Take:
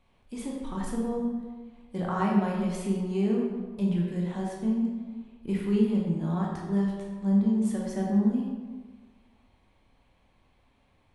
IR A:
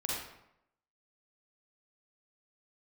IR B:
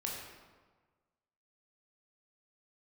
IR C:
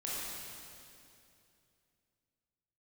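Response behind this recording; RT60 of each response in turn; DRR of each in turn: B; 0.80 s, 1.4 s, 2.7 s; -5.0 dB, -3.0 dB, -7.0 dB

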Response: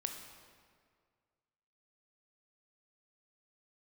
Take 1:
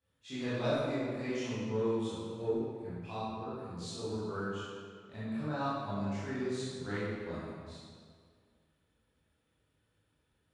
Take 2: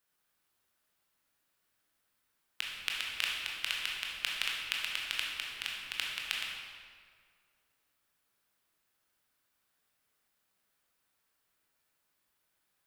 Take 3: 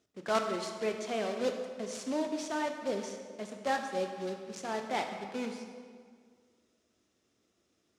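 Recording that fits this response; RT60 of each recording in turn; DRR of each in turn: 3; 2.0 s, 2.0 s, 2.0 s; -12.5 dB, -3.0 dB, 4.0 dB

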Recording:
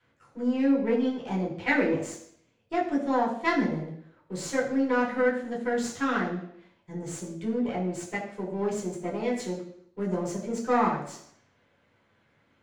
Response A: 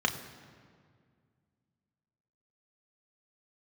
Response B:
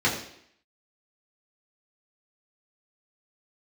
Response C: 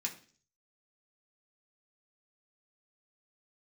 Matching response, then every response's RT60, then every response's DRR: B; 2.0 s, 0.65 s, 0.45 s; 3.5 dB, -6.5 dB, -1.0 dB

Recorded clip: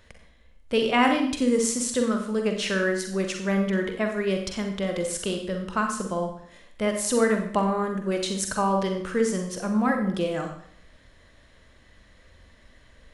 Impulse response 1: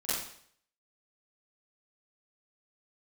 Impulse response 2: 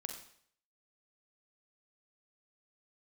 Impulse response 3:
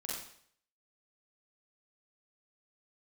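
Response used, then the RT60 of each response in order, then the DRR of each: 2; 0.60 s, 0.60 s, 0.60 s; -14.5 dB, 3.5 dB, -6.0 dB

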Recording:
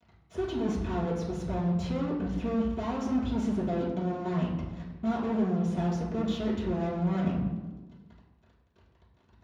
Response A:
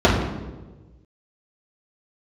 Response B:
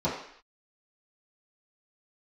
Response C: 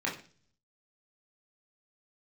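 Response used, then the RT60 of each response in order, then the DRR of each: A; 1.2 s, no single decay rate, 0.40 s; -8.5 dB, -11.5 dB, -4.5 dB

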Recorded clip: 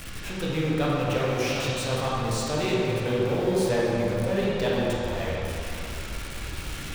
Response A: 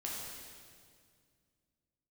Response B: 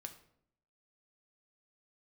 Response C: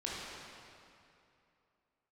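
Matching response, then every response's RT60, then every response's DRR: C; 2.1 s, 0.70 s, 2.7 s; -4.5 dB, 5.5 dB, -6.5 dB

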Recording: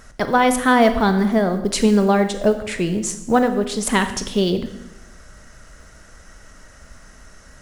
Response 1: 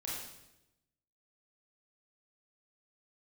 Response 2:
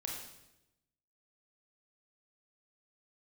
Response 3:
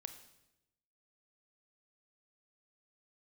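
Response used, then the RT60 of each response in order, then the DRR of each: 3; 0.90 s, 0.90 s, 0.90 s; -6.0 dB, -1.5 dB, 8.5 dB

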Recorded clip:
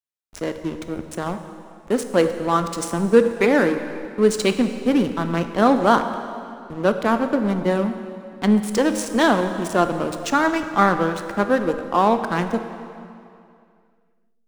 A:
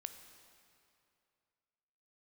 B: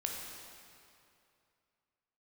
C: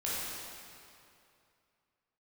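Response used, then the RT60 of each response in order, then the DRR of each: A; 2.6 s, 2.6 s, 2.6 s; 8.0 dB, -0.5 dB, -8.5 dB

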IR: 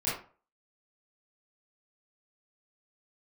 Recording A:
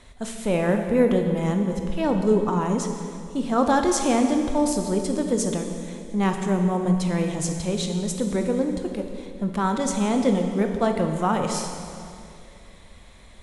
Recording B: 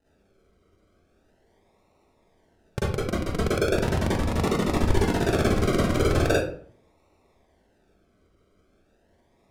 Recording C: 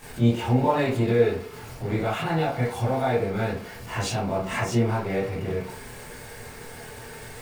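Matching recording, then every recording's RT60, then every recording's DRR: C; 2.4 s, 0.55 s, 0.40 s; 4.0 dB, -8.5 dB, -10.5 dB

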